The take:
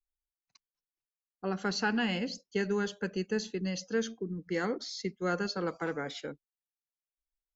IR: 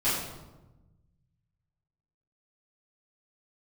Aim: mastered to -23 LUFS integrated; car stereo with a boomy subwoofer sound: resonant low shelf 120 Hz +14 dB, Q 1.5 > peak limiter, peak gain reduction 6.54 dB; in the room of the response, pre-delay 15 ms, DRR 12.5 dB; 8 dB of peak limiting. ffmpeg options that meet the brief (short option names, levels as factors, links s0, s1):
-filter_complex "[0:a]alimiter=level_in=1.06:limit=0.0631:level=0:latency=1,volume=0.944,asplit=2[s0][s1];[1:a]atrim=start_sample=2205,adelay=15[s2];[s1][s2]afir=irnorm=-1:irlink=0,volume=0.0631[s3];[s0][s3]amix=inputs=2:normalize=0,lowshelf=f=120:t=q:w=1.5:g=14,volume=7.08,alimiter=limit=0.224:level=0:latency=1"